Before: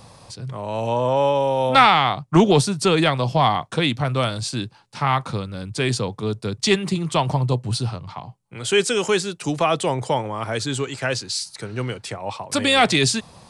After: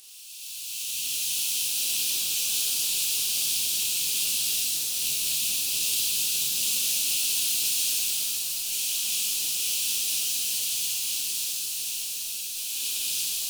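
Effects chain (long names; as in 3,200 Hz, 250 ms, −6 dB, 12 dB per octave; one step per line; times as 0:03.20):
compressing power law on the bin magnitudes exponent 0.12
source passing by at 0:05.82, 8 m/s, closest 7.5 metres
Butterworth high-pass 2,500 Hz 96 dB per octave
reversed playback
downward compressor, threshold −36 dBFS, peak gain reduction 19.5 dB
reversed playback
harmonic generator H 8 −35 dB, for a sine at −18 dBFS
upward compression, threshold −45 dBFS
on a send: flutter between parallel walls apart 9.1 metres, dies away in 0.42 s
on the sum: reverb with rising layers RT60 3.9 s, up +7 semitones, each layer −2 dB, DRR −11 dB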